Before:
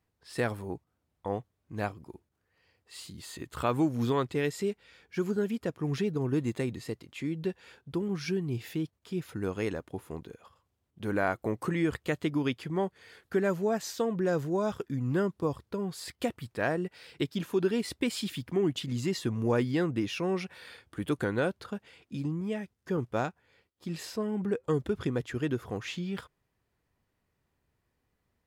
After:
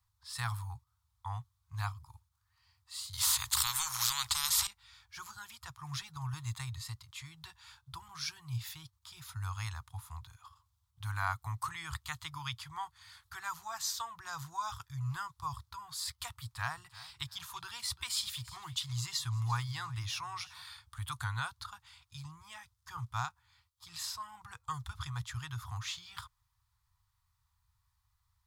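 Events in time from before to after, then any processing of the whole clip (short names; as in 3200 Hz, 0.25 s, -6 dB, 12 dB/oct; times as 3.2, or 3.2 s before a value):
3.13–4.67 spectral compressor 10:1
16.14–20.62 feedback echo 0.345 s, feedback 25%, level -18.5 dB
whole clip: inverse Chebyshev band-stop 180–600 Hz, stop band 40 dB; band shelf 2100 Hz -9.5 dB 1.2 oct; gain +4 dB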